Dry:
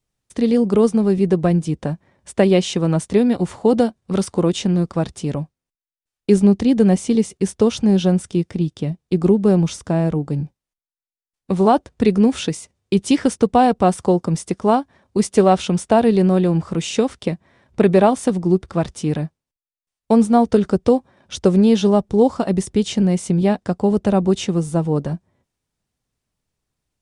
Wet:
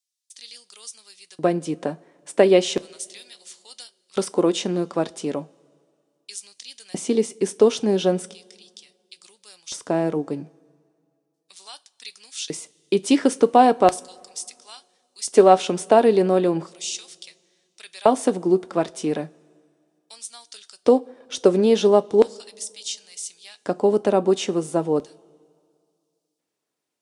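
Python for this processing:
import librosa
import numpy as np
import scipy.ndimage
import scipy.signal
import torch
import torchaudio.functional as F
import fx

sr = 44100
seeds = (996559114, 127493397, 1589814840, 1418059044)

y = fx.filter_lfo_highpass(x, sr, shape='square', hz=0.36, low_hz=350.0, high_hz=4500.0, q=1.2)
y = fx.rev_double_slope(y, sr, seeds[0], early_s=0.24, late_s=2.2, knee_db=-21, drr_db=13.5)
y = y * 10.0 ** (-1.0 / 20.0)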